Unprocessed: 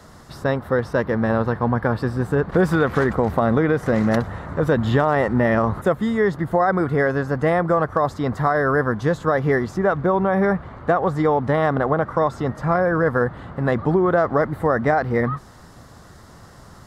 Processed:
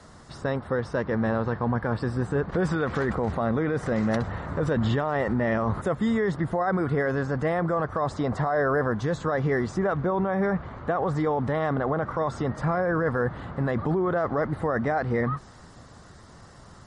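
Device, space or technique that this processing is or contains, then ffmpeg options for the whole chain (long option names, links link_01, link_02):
low-bitrate web radio: -filter_complex "[0:a]asettb=1/sr,asplit=3[link_01][link_02][link_03];[link_01]atrim=end=8.114[link_04];[link_02]atrim=start=8.11:end=8.93,asetpts=PTS-STARTPTS,afade=type=in:duration=0.004:curve=qsin,afade=type=out:start_time=0.816:duration=0.004:curve=qsin,equalizer=frequency=640:width=1.5:gain=5.5[link_05];[link_03]atrim=start=8.926[link_06];[link_04][link_05]acrossfade=duration=0.004:curve1=hsin:curve2=qsin[link_07];[link_07][link_06]acrossfade=duration=0.004:curve1=qsin:curve2=hsin,dynaudnorm=framelen=670:gausssize=11:maxgain=7dB,alimiter=limit=-13dB:level=0:latency=1:release=18,volume=-3.5dB" -ar 44100 -c:a libmp3lame -b:a 40k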